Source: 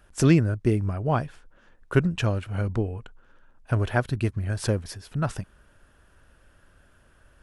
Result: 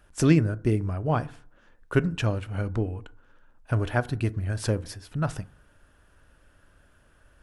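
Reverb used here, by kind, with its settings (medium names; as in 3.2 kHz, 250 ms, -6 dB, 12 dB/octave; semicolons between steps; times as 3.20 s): FDN reverb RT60 0.5 s, low-frequency decay 1.1×, high-frequency decay 0.4×, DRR 14.5 dB; trim -1.5 dB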